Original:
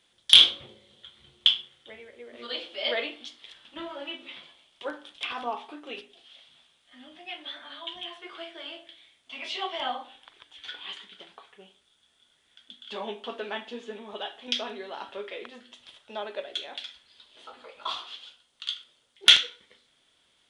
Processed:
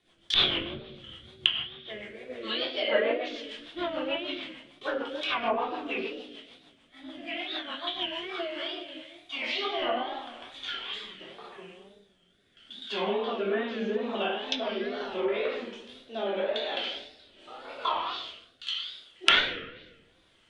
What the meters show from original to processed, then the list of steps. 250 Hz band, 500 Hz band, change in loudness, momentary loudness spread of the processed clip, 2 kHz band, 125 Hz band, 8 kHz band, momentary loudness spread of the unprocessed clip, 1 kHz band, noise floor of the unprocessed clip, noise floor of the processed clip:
+8.5 dB, +8.0 dB, -5.0 dB, 18 LU, +2.5 dB, no reading, under -10 dB, 22 LU, +4.0 dB, -68 dBFS, -64 dBFS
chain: simulated room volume 530 m³, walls mixed, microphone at 3.2 m; wow and flutter 120 cents; rotary cabinet horn 6.7 Hz, later 0.8 Hz, at 8.04 s; low-pass that closes with the level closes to 1.5 kHz, closed at -23 dBFS; tape noise reduction on one side only decoder only; trim +1 dB

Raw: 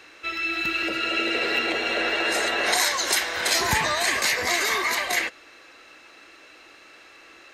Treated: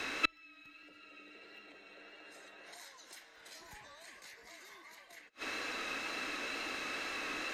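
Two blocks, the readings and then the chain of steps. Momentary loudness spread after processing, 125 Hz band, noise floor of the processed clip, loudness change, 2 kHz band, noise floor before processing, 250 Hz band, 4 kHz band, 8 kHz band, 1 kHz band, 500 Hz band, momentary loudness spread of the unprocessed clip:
17 LU, -23.5 dB, -60 dBFS, -17.0 dB, -17.0 dB, -50 dBFS, -16.5 dB, -19.0 dB, -24.0 dB, -18.0 dB, -20.0 dB, 4 LU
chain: wow and flutter 24 cents; inverted gate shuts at -22 dBFS, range -40 dB; frequency shift -33 Hz; trim +9 dB

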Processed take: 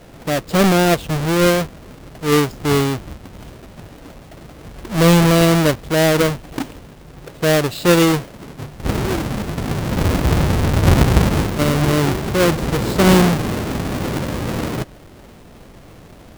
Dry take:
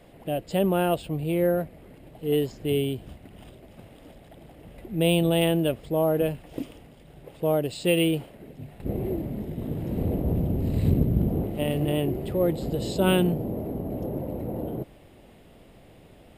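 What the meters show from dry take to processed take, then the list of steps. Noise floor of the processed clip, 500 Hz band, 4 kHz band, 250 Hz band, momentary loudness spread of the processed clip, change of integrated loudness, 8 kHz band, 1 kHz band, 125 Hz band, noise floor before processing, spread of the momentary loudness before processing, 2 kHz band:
-42 dBFS, +7.5 dB, +11.0 dB, +9.0 dB, 14 LU, +9.5 dB, +15.0 dB, +13.0 dB, +10.0 dB, -52 dBFS, 14 LU, +14.5 dB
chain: square wave that keeps the level; trim +5 dB

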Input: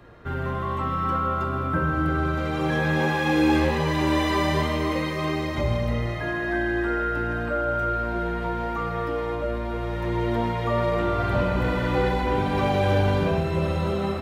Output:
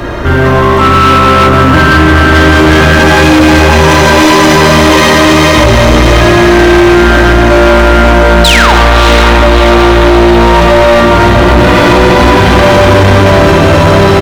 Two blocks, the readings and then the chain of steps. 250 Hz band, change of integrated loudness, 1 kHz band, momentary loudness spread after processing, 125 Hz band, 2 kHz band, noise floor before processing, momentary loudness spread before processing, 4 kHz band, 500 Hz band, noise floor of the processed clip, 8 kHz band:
+19.5 dB, +20.5 dB, +20.0 dB, 1 LU, +18.0 dB, +22.0 dB, -29 dBFS, 6 LU, +25.0 dB, +20.0 dB, -5 dBFS, +29.0 dB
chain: painted sound fall, 8.44–8.75 s, 680–4300 Hz -23 dBFS; peaking EQ 6 kHz +6 dB 0.29 oct; Schroeder reverb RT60 1.7 s, combs from 31 ms, DRR 5 dB; in parallel at -1 dB: compressor with a negative ratio -25 dBFS; on the sum: comb 3.2 ms, depth 40%; on a send: echo that smears into a reverb 634 ms, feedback 63%, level -5 dB; on the sum: overload inside the chain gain 19.5 dB; loudness maximiser +26.5 dB; trim -1 dB

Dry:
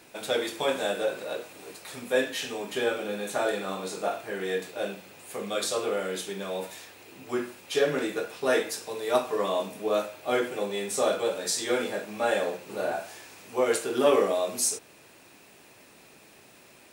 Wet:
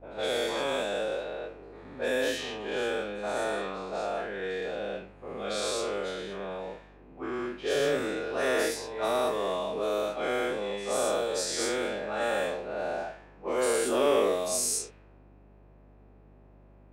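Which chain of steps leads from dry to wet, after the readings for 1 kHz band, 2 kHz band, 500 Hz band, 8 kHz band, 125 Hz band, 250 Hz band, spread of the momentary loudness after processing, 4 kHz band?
-1.0 dB, -1.0 dB, -1.5 dB, -1.0 dB, -1.5 dB, -2.0 dB, 11 LU, -1.0 dB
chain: every event in the spectrogram widened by 240 ms; hum 50 Hz, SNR 25 dB; level-controlled noise filter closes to 730 Hz, open at -16 dBFS; trim -8.5 dB

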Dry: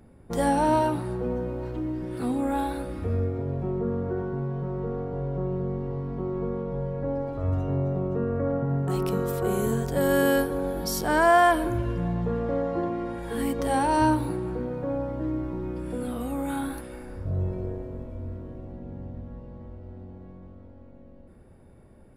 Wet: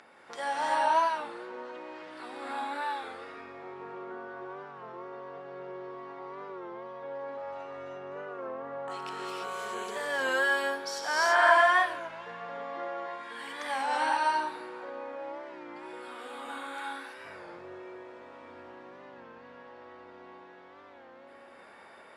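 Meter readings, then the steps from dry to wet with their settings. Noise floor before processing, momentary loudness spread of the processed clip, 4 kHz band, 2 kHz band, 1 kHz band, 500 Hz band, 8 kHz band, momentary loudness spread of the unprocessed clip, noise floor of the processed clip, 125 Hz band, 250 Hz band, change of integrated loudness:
-50 dBFS, 22 LU, +2.0 dB, +3.5 dB, -1.0 dB, -8.0 dB, -6.0 dB, 17 LU, -52 dBFS, under -30 dB, -18.5 dB, -4.0 dB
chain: high-pass 1.2 kHz 12 dB/octave; upward compressor, threshold -43 dBFS; distance through air 110 m; gated-style reverb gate 360 ms rising, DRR -4 dB; warped record 33 1/3 rpm, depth 100 cents

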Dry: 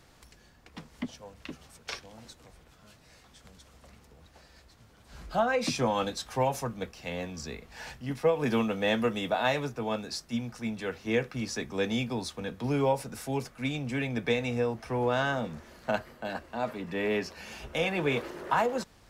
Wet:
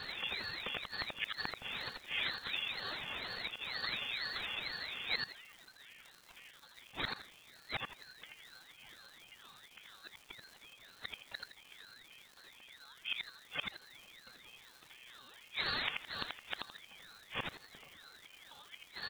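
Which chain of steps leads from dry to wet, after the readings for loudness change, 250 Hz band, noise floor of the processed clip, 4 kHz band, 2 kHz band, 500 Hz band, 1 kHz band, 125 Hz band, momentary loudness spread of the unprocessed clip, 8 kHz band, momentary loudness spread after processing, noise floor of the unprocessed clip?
-8.5 dB, -25.0 dB, -61 dBFS, 0.0 dB, -5.0 dB, -25.0 dB, -15.0 dB, -22.0 dB, 14 LU, -17.0 dB, 19 LU, -59 dBFS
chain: dynamic bell 2 kHz, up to -5 dB, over -45 dBFS, Q 0.92; comb 3.1 ms, depth 92%; compression 12:1, threshold -35 dBFS, peak gain reduction 17 dB; inverted gate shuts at -35 dBFS, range -32 dB; frequency inversion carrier 3.1 kHz; crackle 400 per s -60 dBFS; on a send: feedback delay 83 ms, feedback 28%, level -4 dB; on the sum: ring modulator with a swept carrier 810 Hz, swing 65%, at 2.1 Hz; trim +14 dB

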